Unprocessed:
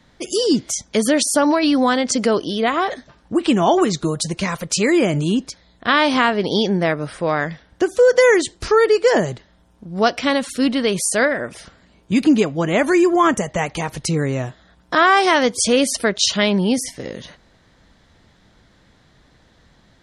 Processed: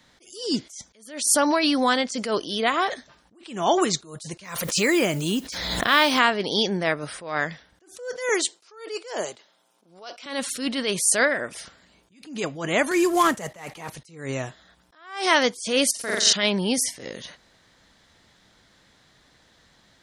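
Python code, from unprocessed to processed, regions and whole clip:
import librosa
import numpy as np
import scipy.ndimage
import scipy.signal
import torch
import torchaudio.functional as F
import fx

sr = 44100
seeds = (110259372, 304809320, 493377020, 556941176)

y = fx.chain(x, sr, fx.mod_noise(seeds[0], snr_db=31),
    fx.pre_swell(db_per_s=47.0), at=(4.44, 6.19))
y = fx.chain(y, sr, fx.highpass(hz=400.0, slope=12),
    fx.peak_eq(hz=1800.0, db=-7.5, octaves=0.25), at=(8.29, 10.26))
y = fx.chain(y, sr, fx.cvsd(bps=64000),
    fx.band_squash(depth_pct=100), at=(12.91, 13.9))
y = fx.chain(y, sr, fx.high_shelf(hz=8900.0, db=4.5),
    fx.level_steps(step_db=19),
    fx.room_flutter(wall_m=7.4, rt60_s=1.1), at=(15.91, 16.33))
y = fx.tilt_eq(y, sr, slope=2.0)
y = fx.attack_slew(y, sr, db_per_s=110.0)
y = y * librosa.db_to_amplitude(-3.0)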